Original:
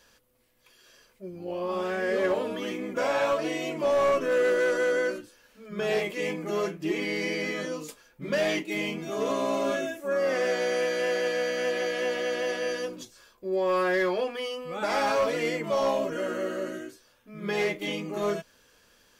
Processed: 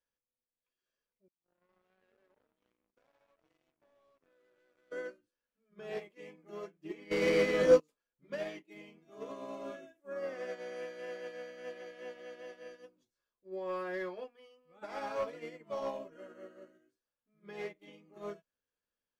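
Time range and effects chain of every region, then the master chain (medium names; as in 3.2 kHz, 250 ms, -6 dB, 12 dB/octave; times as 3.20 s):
1.28–4.92 s: power-law waveshaper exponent 3 + compression 10:1, threshold -35 dBFS
7.11–7.80 s: waveshaping leveller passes 3 + peaking EQ 510 Hz +8 dB 0.3 oct
whole clip: treble shelf 3.1 kHz -7.5 dB; upward expansion 2.5:1, over -38 dBFS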